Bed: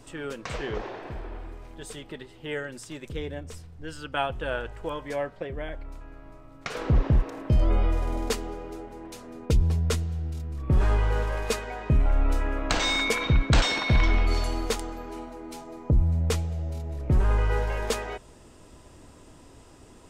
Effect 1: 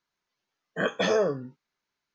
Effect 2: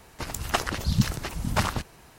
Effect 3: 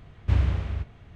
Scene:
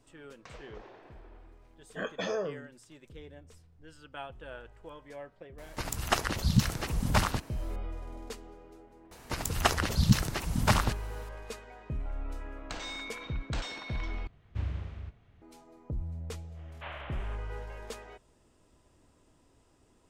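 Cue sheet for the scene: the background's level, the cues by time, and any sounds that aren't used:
bed −14.5 dB
0:01.19: mix in 1 −9 dB
0:05.58: mix in 2 −2 dB
0:09.11: mix in 2 −0.5 dB
0:14.27: overwrite with 3 −12 dB
0:16.53: mix in 3 −1.5 dB, fades 0.05 s + elliptic band-pass filter 600–3,200 Hz

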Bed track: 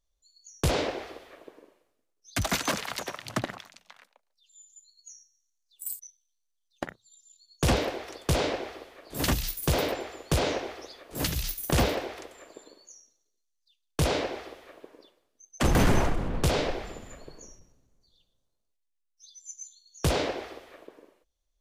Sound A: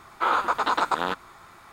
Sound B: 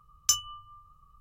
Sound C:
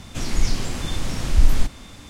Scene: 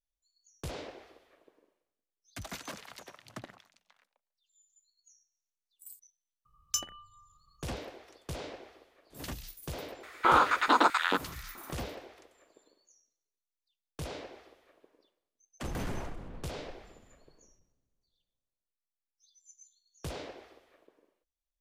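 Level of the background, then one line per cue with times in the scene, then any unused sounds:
bed track −14.5 dB
0:06.45: mix in B −7.5 dB
0:10.03: mix in A −0.5 dB + auto-filter high-pass square 2.3 Hz 260–1,900 Hz
not used: C

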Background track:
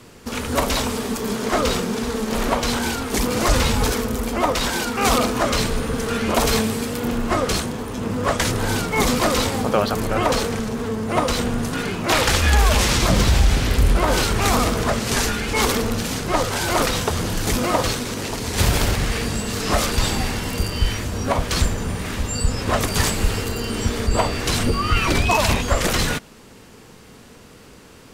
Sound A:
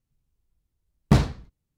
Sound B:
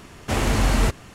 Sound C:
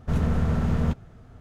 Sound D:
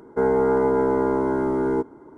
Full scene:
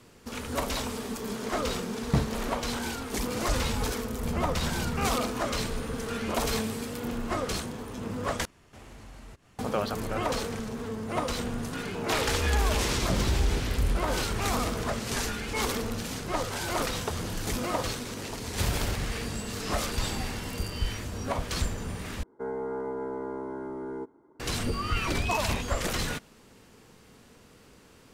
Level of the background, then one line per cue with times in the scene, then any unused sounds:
background track −10 dB
0:01.02: mix in A −7.5 dB
0:04.14: mix in C −9.5 dB
0:08.45: overwrite with B −15 dB + downward compressor 2 to 1, threshold −39 dBFS
0:11.78: mix in D −16.5 dB + pitch vibrato 1.9 Hz 69 cents
0:22.23: overwrite with D −13.5 dB + low-shelf EQ 150 Hz −4 dB

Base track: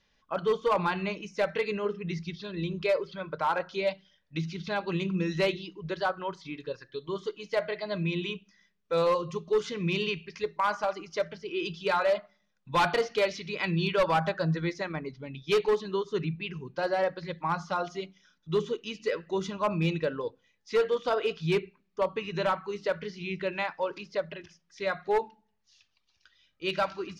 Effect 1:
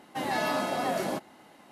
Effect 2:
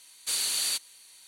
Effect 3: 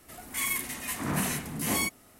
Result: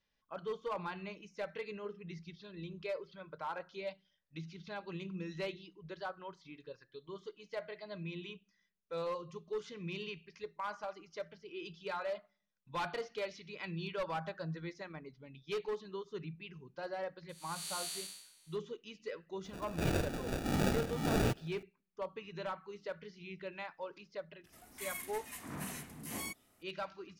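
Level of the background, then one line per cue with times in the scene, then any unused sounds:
base track −13 dB
0:17.29: mix in 2 −10.5 dB + spectrum smeared in time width 306 ms
0:19.44: mix in 3 −2 dB + decimation without filtering 42×
0:24.44: mix in 3 −13.5 dB
not used: 1

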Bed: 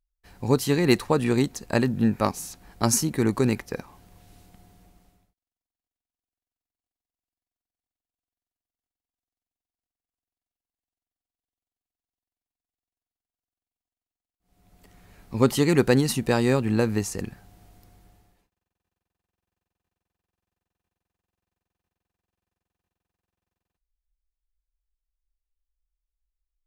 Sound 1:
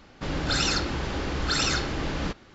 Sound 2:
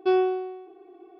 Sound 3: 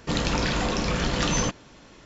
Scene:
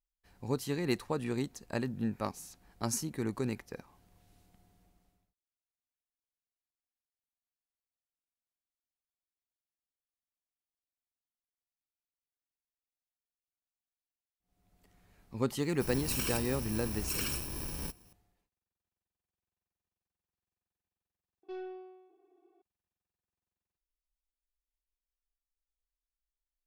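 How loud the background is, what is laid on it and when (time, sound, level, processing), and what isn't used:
bed −12 dB
0:15.59: mix in 1 −10 dB + samples in bit-reversed order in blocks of 64 samples
0:21.43: overwrite with 2 −18 dB + soft clipping −19 dBFS
not used: 3

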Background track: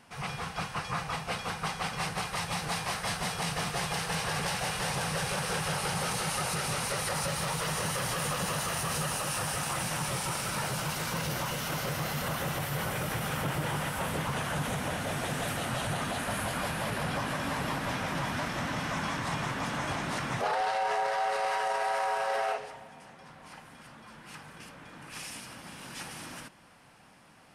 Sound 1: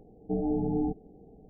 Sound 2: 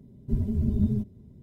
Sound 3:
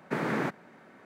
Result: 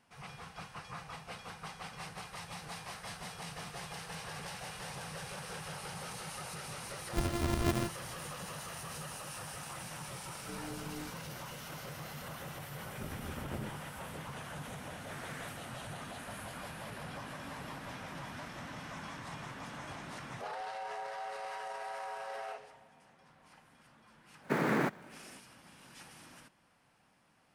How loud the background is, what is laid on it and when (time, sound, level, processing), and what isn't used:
background track −12 dB
0:06.85: mix in 2 −7.5 dB + samples sorted by size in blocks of 128 samples
0:10.18: mix in 1 −17 dB
0:12.70: mix in 2 −13 dB + saturating transformer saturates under 500 Hz
0:14.99: mix in 3 −12 dB + high-pass filter 1,200 Hz
0:24.39: mix in 3 −0.5 dB, fades 0.10 s + gap after every zero crossing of 0.056 ms

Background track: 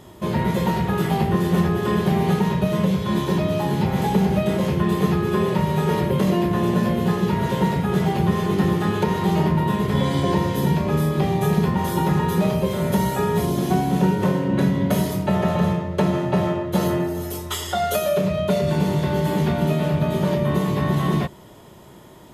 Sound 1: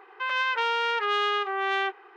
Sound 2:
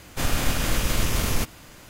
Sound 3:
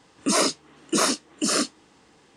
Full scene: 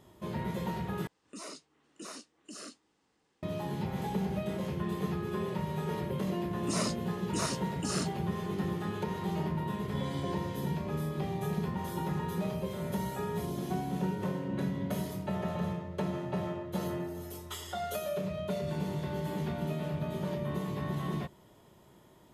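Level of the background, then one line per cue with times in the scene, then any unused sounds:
background track −14 dB
0:01.07: overwrite with 3 −18 dB + downward compressor 1.5 to 1, threshold −32 dBFS
0:06.41: mix in 3 −13 dB
not used: 1, 2

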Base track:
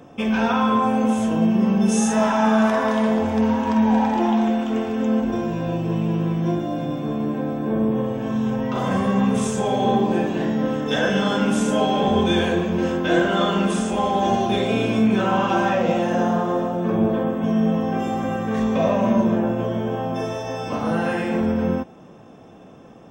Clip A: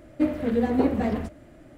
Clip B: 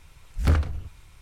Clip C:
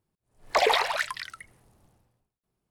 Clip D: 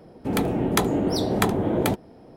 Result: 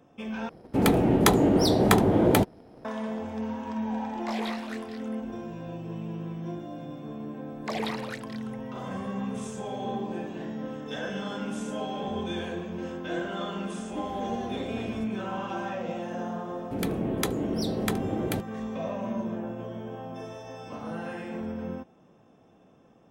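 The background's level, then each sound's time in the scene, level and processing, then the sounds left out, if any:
base track −13.5 dB
0:00.49: overwrite with D −1.5 dB + leveller curve on the samples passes 1
0:03.72: mix in C −10 dB + micro pitch shift up and down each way 48 cents
0:07.13: mix in C −11.5 dB
0:13.76: mix in A −6.5 dB + downward compressor 2 to 1, threshold −32 dBFS
0:16.46: mix in D −6 dB + parametric band 910 Hz −6.5 dB 1.1 octaves
not used: B

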